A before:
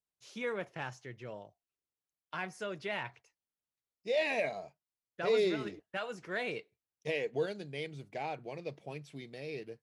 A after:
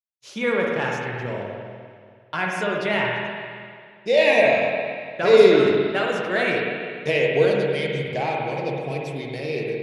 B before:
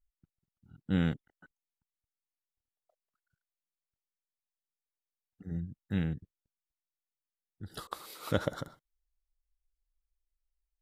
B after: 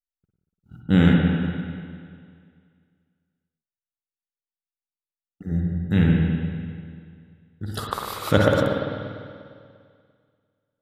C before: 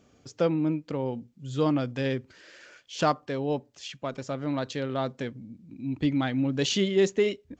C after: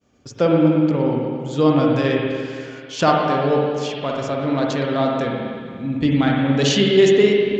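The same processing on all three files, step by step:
expander -54 dBFS; spring tank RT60 2.1 s, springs 49/58 ms, chirp 70 ms, DRR -1.5 dB; peak normalisation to -1.5 dBFS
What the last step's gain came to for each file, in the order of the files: +12.0 dB, +11.0 dB, +7.0 dB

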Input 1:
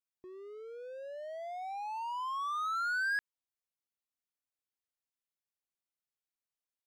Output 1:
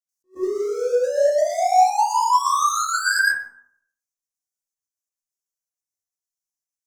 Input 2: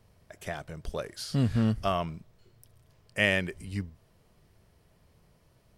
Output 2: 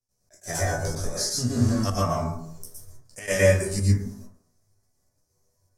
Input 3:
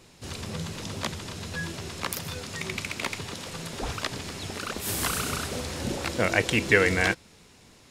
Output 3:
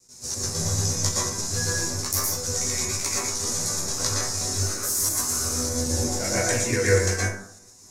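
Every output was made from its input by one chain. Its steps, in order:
de-hum 86.86 Hz, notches 16; gate with hold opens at -50 dBFS; resonant high shelf 4.3 kHz +12.5 dB, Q 3; chorus voices 2, 0.35 Hz, delay 16 ms, depth 3.8 ms; gain riding within 4 dB 0.5 s; chord resonator E2 minor, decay 0.29 s; trance gate ".xxx.xxxxxx" 174 bpm -12 dB; plate-style reverb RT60 0.64 s, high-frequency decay 0.25×, pre-delay 105 ms, DRR -6 dB; attacks held to a fixed rise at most 300 dB/s; peak normalisation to -6 dBFS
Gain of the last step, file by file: +27.0 dB, +14.5 dB, +8.5 dB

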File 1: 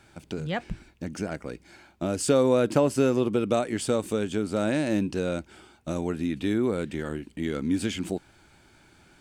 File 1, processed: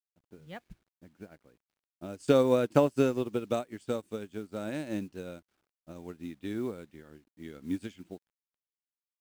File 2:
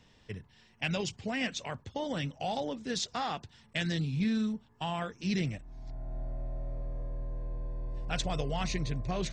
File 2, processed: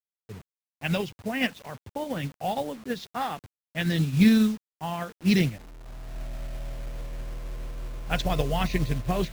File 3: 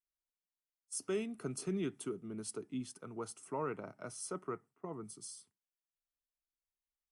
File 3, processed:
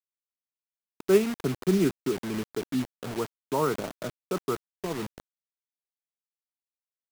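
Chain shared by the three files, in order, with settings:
level-controlled noise filter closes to 610 Hz, open at -23.5 dBFS; bit crusher 8-bit; upward expansion 2.5:1, over -36 dBFS; peak normalisation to -9 dBFS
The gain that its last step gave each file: +0.5 dB, +13.0 dB, +17.5 dB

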